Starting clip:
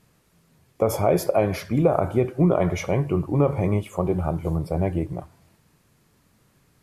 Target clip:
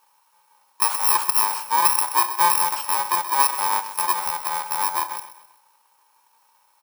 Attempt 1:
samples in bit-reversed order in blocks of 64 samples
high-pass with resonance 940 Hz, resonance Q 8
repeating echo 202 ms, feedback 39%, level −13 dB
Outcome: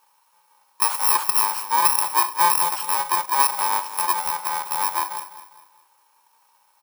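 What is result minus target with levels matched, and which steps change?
echo 73 ms late
change: repeating echo 129 ms, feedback 39%, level −13 dB

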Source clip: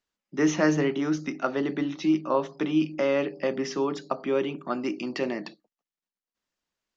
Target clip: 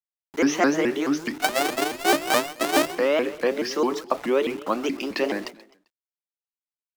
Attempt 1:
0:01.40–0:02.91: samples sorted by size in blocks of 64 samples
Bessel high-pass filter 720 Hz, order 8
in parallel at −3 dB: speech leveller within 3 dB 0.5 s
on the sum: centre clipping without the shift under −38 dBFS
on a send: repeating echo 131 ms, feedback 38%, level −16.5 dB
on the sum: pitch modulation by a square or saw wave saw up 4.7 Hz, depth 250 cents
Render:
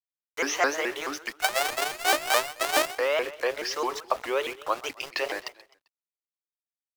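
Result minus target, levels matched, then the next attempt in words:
250 Hz band −11.5 dB
0:01.40–0:02.91: samples sorted by size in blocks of 64 samples
Bessel high-pass filter 310 Hz, order 8
in parallel at −3 dB: speech leveller within 3 dB 0.5 s
on the sum: centre clipping without the shift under −38 dBFS
on a send: repeating echo 131 ms, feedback 38%, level −16.5 dB
on the sum: pitch modulation by a square or saw wave saw up 4.7 Hz, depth 250 cents

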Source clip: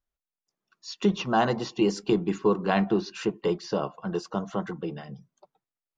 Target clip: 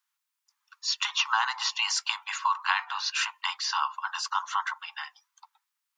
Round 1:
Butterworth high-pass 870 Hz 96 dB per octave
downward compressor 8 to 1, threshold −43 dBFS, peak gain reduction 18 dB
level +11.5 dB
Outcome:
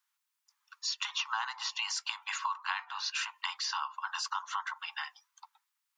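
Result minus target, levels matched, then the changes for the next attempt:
downward compressor: peak gain reduction +9 dB
change: downward compressor 8 to 1, threshold −33 dBFS, peak gain reduction 9.5 dB

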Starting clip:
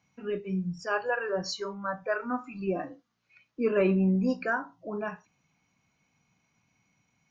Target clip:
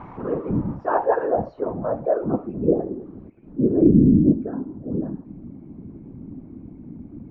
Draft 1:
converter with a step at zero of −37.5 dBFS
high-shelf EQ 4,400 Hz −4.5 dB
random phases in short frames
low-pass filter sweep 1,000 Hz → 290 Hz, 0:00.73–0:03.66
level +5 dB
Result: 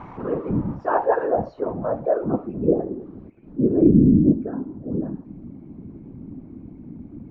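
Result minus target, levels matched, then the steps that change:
4,000 Hz band +3.5 dB
change: high-shelf EQ 4,400 Hz −14.5 dB

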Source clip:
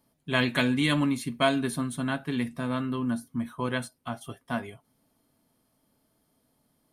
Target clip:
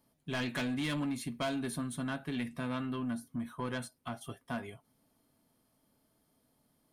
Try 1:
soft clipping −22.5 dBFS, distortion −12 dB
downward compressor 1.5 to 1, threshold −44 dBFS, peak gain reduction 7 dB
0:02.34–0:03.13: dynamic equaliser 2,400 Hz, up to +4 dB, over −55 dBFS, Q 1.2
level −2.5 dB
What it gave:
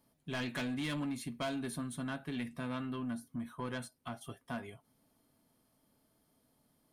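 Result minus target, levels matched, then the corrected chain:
downward compressor: peak gain reduction +2.5 dB
soft clipping −22.5 dBFS, distortion −12 dB
downward compressor 1.5 to 1, threshold −36 dBFS, peak gain reduction 4 dB
0:02.34–0:03.13: dynamic equaliser 2,400 Hz, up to +4 dB, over −55 dBFS, Q 1.2
level −2.5 dB

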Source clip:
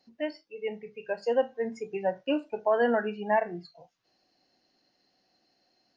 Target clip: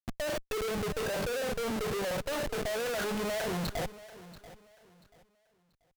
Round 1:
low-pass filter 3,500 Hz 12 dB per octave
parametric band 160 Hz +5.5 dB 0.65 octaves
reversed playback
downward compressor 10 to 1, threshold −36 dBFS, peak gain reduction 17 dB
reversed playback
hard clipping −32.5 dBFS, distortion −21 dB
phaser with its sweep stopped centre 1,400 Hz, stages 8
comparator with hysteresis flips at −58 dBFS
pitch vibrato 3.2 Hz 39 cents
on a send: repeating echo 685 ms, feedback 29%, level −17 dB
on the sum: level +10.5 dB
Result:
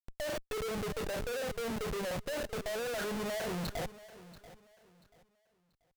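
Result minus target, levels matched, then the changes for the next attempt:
downward compressor: peak gain reduction +7 dB
change: downward compressor 10 to 1, threshold −28.5 dBFS, peak gain reduction 10 dB

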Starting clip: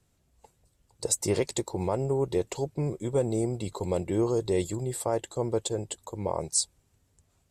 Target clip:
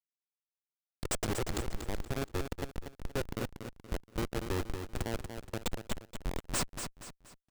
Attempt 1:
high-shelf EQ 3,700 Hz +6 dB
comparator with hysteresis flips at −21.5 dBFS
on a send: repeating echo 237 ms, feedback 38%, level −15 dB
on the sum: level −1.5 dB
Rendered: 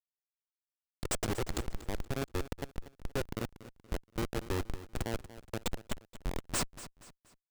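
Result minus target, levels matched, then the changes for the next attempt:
echo-to-direct −7.5 dB
change: repeating echo 237 ms, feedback 38%, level −7.5 dB

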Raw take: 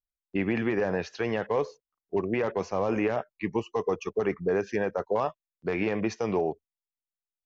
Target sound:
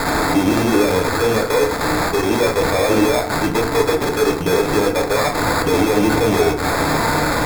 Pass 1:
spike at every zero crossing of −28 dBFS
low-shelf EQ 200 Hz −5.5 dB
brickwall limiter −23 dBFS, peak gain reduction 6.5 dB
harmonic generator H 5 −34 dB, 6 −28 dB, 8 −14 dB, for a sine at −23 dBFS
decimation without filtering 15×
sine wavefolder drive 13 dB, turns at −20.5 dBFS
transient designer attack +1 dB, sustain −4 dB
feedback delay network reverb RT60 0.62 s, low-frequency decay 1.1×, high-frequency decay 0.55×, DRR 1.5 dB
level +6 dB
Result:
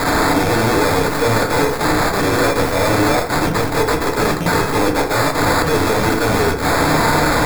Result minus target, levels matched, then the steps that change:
sine wavefolder: distortion +14 dB
change: sine wavefolder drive 7 dB, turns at −20.5 dBFS

